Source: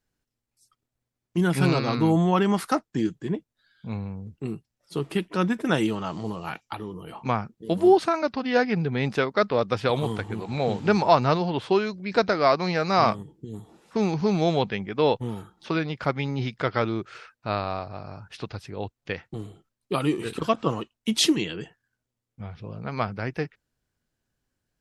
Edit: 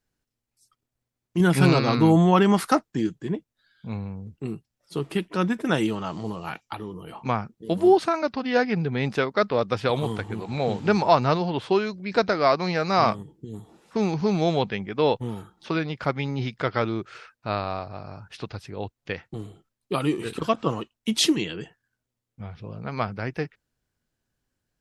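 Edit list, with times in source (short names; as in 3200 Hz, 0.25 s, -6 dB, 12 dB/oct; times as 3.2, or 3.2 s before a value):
1.4–2.92 gain +3.5 dB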